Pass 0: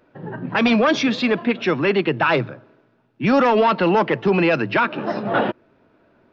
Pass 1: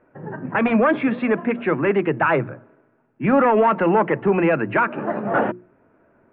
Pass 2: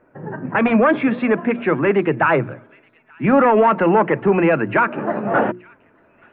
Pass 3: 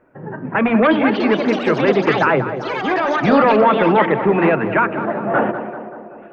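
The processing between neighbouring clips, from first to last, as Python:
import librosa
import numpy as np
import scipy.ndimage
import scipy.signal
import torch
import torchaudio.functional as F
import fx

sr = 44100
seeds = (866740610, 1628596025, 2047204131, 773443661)

y1 = scipy.signal.sosfilt(scipy.signal.cheby2(4, 50, 5400.0, 'lowpass', fs=sr, output='sos'), x)
y1 = fx.hum_notches(y1, sr, base_hz=60, count=6)
y2 = fx.echo_wet_highpass(y1, sr, ms=877, feedback_pct=31, hz=2200.0, wet_db=-21.5)
y2 = y2 * 10.0 ** (2.5 / 20.0)
y3 = fx.echo_pitch(y2, sr, ms=416, semitones=5, count=3, db_per_echo=-6.0)
y3 = fx.echo_tape(y3, sr, ms=193, feedback_pct=72, wet_db=-8.5, lp_hz=1500.0, drive_db=4.0, wow_cents=38)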